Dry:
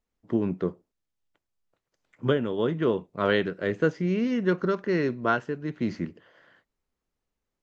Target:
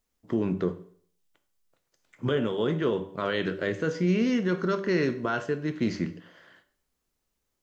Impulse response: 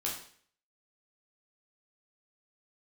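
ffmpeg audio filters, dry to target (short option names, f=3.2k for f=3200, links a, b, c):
-filter_complex "[0:a]highshelf=f=4.3k:g=9.5,bandreject=f=97.1:t=h:w=4,bandreject=f=194.2:t=h:w=4,bandreject=f=291.3:t=h:w=4,bandreject=f=388.4:t=h:w=4,bandreject=f=485.5:t=h:w=4,bandreject=f=582.6:t=h:w=4,bandreject=f=679.7:t=h:w=4,bandreject=f=776.8:t=h:w=4,bandreject=f=873.9:t=h:w=4,bandreject=f=971:t=h:w=4,bandreject=f=1.0681k:t=h:w=4,alimiter=limit=-19dB:level=0:latency=1:release=45,asplit=2[a][b];[1:a]atrim=start_sample=2205[c];[b][c]afir=irnorm=-1:irlink=0,volume=-10.5dB[d];[a][d]amix=inputs=2:normalize=0"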